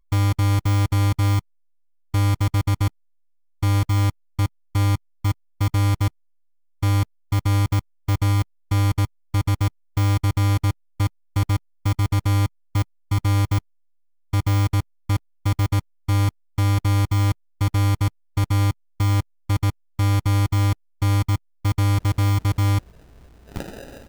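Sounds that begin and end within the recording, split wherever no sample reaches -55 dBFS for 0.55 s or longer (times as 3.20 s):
2.14–2.88 s
3.62–6.10 s
6.82–13.60 s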